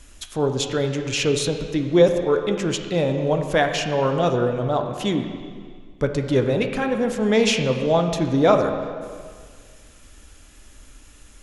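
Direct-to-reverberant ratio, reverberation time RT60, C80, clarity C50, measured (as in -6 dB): 4.5 dB, 1.9 s, 7.5 dB, 6.5 dB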